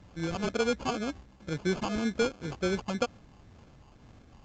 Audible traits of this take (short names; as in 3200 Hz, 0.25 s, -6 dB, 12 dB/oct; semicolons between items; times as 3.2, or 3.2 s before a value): phasing stages 4, 2 Hz, lowest notch 470–2600 Hz; aliases and images of a low sample rate 1900 Hz, jitter 0%; µ-law